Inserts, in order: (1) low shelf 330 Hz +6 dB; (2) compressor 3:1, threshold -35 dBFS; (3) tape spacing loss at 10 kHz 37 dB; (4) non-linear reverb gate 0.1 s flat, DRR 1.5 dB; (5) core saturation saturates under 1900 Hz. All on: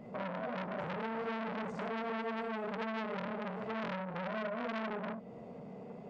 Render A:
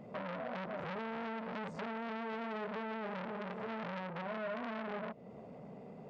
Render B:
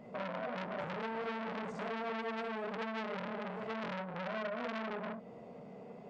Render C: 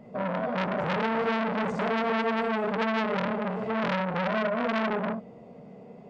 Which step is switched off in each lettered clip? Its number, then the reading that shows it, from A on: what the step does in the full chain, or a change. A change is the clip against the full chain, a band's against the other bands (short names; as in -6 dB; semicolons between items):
4, loudness change -2.5 LU; 1, 4 kHz band +2.0 dB; 2, mean gain reduction 8.5 dB